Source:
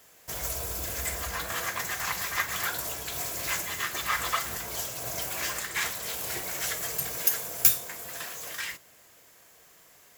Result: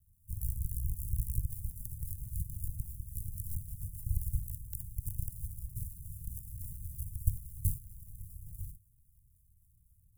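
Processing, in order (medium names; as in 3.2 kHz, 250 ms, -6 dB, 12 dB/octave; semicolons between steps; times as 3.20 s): rattle on loud lows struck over -42 dBFS, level -10 dBFS; decimation with a swept rate 30×, swing 60% 3.7 Hz; inverse Chebyshev band-stop 510–2500 Hz, stop band 80 dB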